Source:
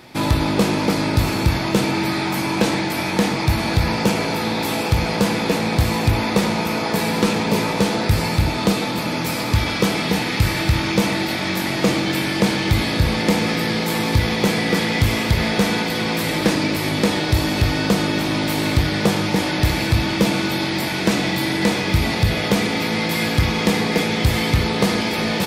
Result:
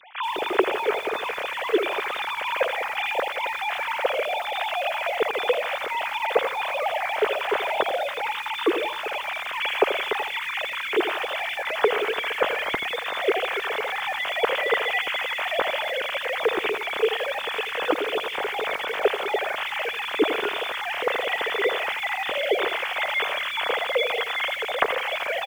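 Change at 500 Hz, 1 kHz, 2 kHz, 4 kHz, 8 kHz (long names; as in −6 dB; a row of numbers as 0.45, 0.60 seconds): −1.5, −2.0, −1.5, −5.5, −17.0 decibels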